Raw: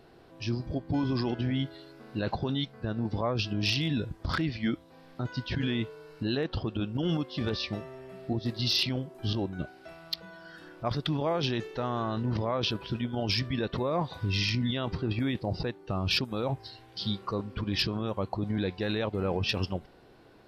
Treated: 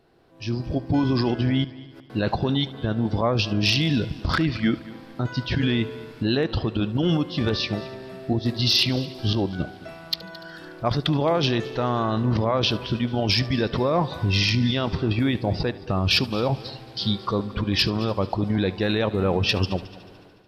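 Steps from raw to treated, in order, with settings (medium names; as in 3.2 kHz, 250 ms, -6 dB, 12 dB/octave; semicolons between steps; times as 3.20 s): level rider gain up to 13 dB; 1.64–2.10 s: inverted gate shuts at -27 dBFS, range -30 dB; multi-head delay 73 ms, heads first and third, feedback 52%, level -20 dB; trim -5.5 dB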